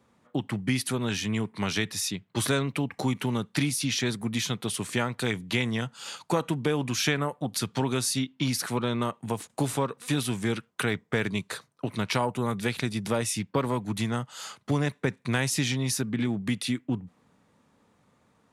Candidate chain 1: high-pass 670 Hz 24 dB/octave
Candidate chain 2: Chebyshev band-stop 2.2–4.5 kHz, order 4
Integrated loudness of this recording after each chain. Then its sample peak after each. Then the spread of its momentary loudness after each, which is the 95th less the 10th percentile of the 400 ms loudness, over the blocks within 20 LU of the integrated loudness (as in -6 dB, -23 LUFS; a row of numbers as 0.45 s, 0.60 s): -32.5 LUFS, -30.5 LUFS; -11.0 dBFS, -12.0 dBFS; 10 LU, 5 LU